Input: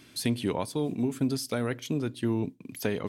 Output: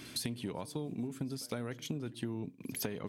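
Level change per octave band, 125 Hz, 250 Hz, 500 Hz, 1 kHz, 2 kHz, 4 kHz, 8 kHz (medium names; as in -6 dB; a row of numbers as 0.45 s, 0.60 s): -8.5 dB, -10.0 dB, -10.5 dB, -10.0 dB, -9.0 dB, -4.5 dB, -4.0 dB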